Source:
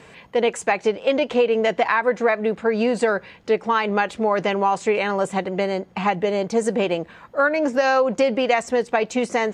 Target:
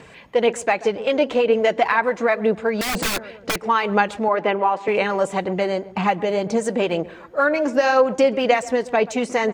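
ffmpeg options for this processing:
-filter_complex "[0:a]asplit=2[a][b];[b]adelay=133,lowpass=f=1.1k:p=1,volume=-16.5dB,asplit=2[c][d];[d]adelay=133,lowpass=f=1.1k:p=1,volume=0.49,asplit=2[e][f];[f]adelay=133,lowpass=f=1.1k:p=1,volume=0.49,asplit=2[g][h];[h]adelay=133,lowpass=f=1.1k:p=1,volume=0.49[i];[a][c][e][g][i]amix=inputs=5:normalize=0,asettb=1/sr,asplit=3[j][k][l];[j]atrim=end=2.814[m];[k]atrim=start=2.81:end=3.58,asetpts=PTS-STARTPTS,afade=t=in:d=0.004:c=qsin,afade=t=out:st=0.766:d=0.004:c=qsin,aeval=exprs='(mod(7.94*val(0)+1,2)-1)/7.94':c=same[n];[l]atrim=start=3.576[o];[m][n]acrossfade=d=0.004:c1=hsin:c2=qsin[p];[p][o]acrossfade=d=0.004:c1=qsin:c2=hsin,aphaser=in_gain=1:out_gain=1:delay=3.6:decay=0.34:speed=2:type=sinusoidal,asettb=1/sr,asplit=3[q][r][s];[q]atrim=end=4.284[t];[r]atrim=start=4.28:end=4.88,asetpts=PTS-STARTPTS,afade=t=in:d=0.004:c=qsin,afade=t=out:st=0.596:d=0.004:c=qsin,acrossover=split=200 3500:gain=0.0708 1 0.0891[u][v][w];[u][v][w]amix=inputs=3:normalize=0[x];[s]atrim=start=4.876[y];[t][x]acrossfade=d=0.004:c1=hsin:c2=qsin[z];[z][y]acrossfade=d=0.004:c1=qsin:c2=hsin"

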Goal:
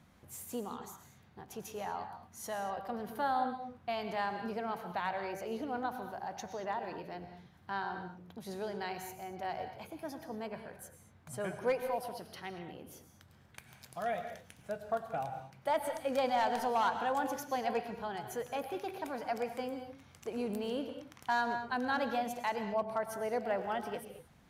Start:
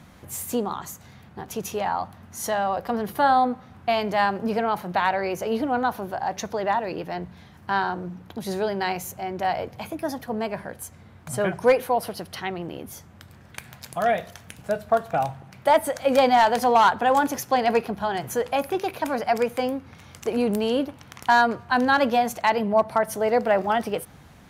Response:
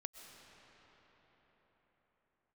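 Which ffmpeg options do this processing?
-filter_complex "[1:a]atrim=start_sample=2205,afade=t=out:st=0.34:d=0.01,atrim=end_sample=15435,asetrate=52920,aresample=44100[a];[0:a][a]afir=irnorm=-1:irlink=0,volume=-7dB"

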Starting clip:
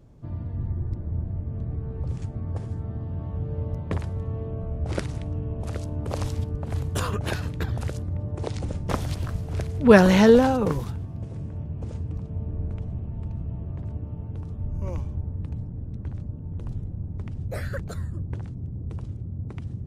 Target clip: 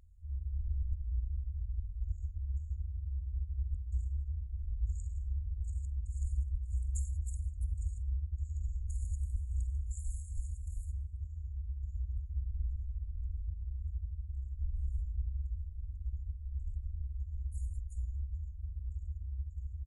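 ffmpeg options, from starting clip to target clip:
-af "afftfilt=real='re*(1-between(b*sr/4096,110,8800))':imag='im*(1-between(b*sr/4096,110,8800))':win_size=4096:overlap=0.75,asetrate=33038,aresample=44100,atempo=1.33484,volume=-4.5dB"

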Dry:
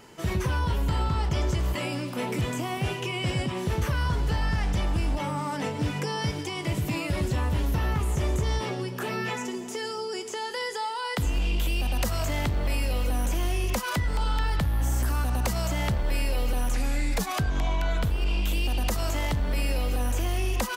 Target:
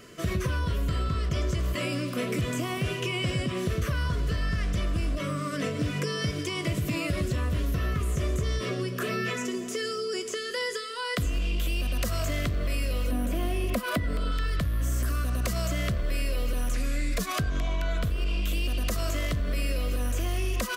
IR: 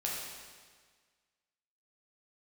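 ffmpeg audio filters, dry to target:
-filter_complex "[0:a]asettb=1/sr,asplit=3[a][b][c];[a]atrim=end=13.114[d];[b]atrim=start=13.11:end=14.32,asetpts=PTS-STARTPTS,afade=t=in:d=0.004:c=qsin,afade=t=out:st=1.206:d=0.004:c=qsin,equalizer=f=250:t=o:w=0.67:g=10,equalizer=f=630:t=o:w=0.67:g=6,equalizer=f=6.3k:t=o:w=0.67:g=-9[e];[c]atrim=start=14.316[f];[d][e]acrossfade=d=0.004:c1=hsin:c2=qsin[g];[g][f]acrossfade=d=0.004:c1=qsin:c2=hsin,acompressor=threshold=-26dB:ratio=6,asuperstop=centerf=850:order=8:qfactor=3.1,volume=2dB"

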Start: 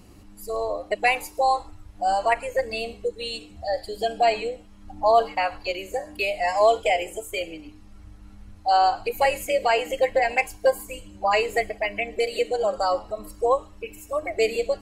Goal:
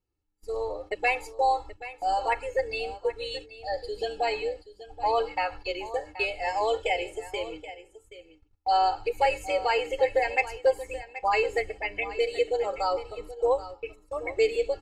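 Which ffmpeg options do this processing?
-af "agate=range=-31dB:threshold=-38dB:ratio=16:detection=peak,lowpass=6.7k,aecho=1:1:2.3:0.73,aecho=1:1:778:0.188,volume=-5.5dB"

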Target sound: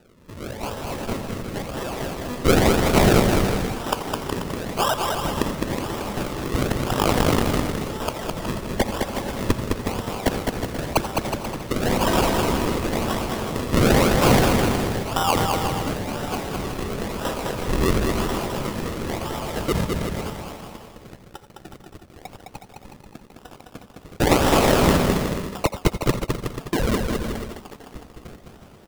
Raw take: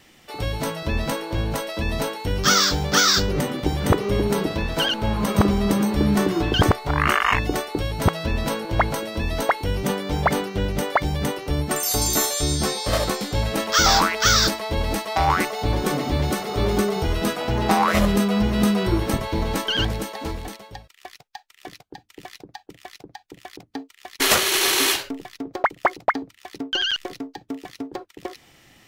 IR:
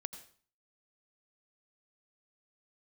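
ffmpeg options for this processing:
-filter_complex "[0:a]highpass=970,acrusher=samples=40:mix=1:aa=0.000001:lfo=1:lforange=40:lforate=0.97,aecho=1:1:210|367.5|485.6|574.2|640.7:0.631|0.398|0.251|0.158|0.1[a];[1:a]atrim=start_sample=2205,afade=t=out:st=0.14:d=0.01,atrim=end_sample=6615[b];[a][b]afir=irnorm=-1:irlink=0,volume=4.5dB"

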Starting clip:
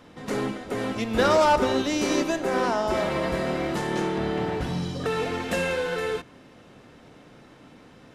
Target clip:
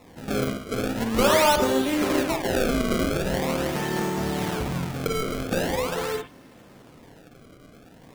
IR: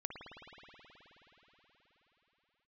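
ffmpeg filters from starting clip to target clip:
-filter_complex "[0:a]acrusher=samples=28:mix=1:aa=0.000001:lfo=1:lforange=44.8:lforate=0.43[a];[1:a]atrim=start_sample=2205,atrim=end_sample=3969[b];[a][b]afir=irnorm=-1:irlink=0,volume=4dB"

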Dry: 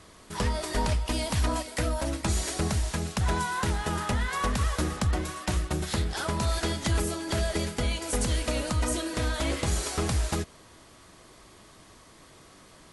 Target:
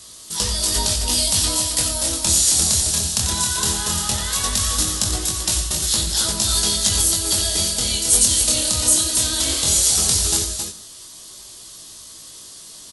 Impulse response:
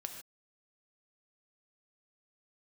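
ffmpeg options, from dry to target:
-filter_complex "[0:a]equalizer=f=2.2k:w=1.5:g=2,aecho=1:1:90.38|268.2:0.355|0.501,asplit=2[a][b];[1:a]atrim=start_sample=2205[c];[b][c]afir=irnorm=-1:irlink=0,volume=-4dB[d];[a][d]amix=inputs=2:normalize=0,aexciter=amount=9.2:drive=3.2:freq=3.2k,flanger=delay=18:depth=7.6:speed=0.17,volume=-1.5dB"

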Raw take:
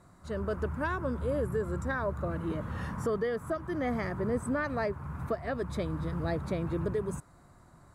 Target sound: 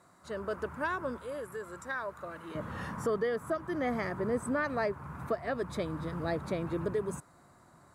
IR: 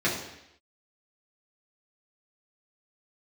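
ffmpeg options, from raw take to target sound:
-af "asetnsamples=n=441:p=0,asendcmd='1.18 highpass f 1300;2.55 highpass f 220',highpass=f=460:p=1,volume=1dB"

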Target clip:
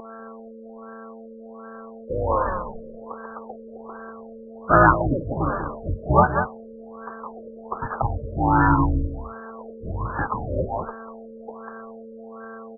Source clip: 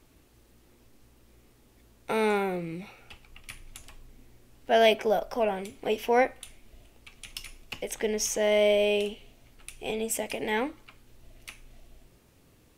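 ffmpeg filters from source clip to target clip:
-filter_complex "[0:a]highpass=62,adynamicequalizer=threshold=0.00398:dfrequency=1200:dqfactor=3.3:tfrequency=1200:tqfactor=3.3:attack=5:release=100:ratio=0.375:range=3:mode=cutabove:tftype=bell,highpass=f=370:t=q:w=0.5412,highpass=f=370:t=q:w=1.307,lowpass=f=3.4k:t=q:w=0.5176,lowpass=f=3.4k:t=q:w=0.7071,lowpass=f=3.4k:t=q:w=1.932,afreqshift=-340,dynaudnorm=f=530:g=9:m=14dB,aeval=exprs='val(0)+0.0447*sin(2*PI*450*n/s)':c=same,aresample=11025,aeval=exprs='val(0)*gte(abs(val(0)),0.0188)':c=same,aresample=44100,aeval=exprs='0.841*(cos(1*acos(clip(val(0)/0.841,-1,1)))-cos(1*PI/2))+0.0211*(cos(2*acos(clip(val(0)/0.841,-1,1)))-cos(2*PI/2))':c=same,lowshelf=f=650:t=q:w=3:g=-11,asplit=2[a][b];[b]aecho=0:1:193:0.376[c];[a][c]amix=inputs=2:normalize=0,asplit=3[d][e][f];[e]asetrate=22050,aresample=44100,atempo=2,volume=-1dB[g];[f]asetrate=52444,aresample=44100,atempo=0.840896,volume=-10dB[h];[d][g][h]amix=inputs=3:normalize=0,afftfilt=real='re*lt(b*sr/1024,600*pow(1800/600,0.5+0.5*sin(2*PI*1.3*pts/sr)))':imag='im*lt(b*sr/1024,600*pow(1800/600,0.5+0.5*sin(2*PI*1.3*pts/sr)))':win_size=1024:overlap=0.75,volume=2.5dB"

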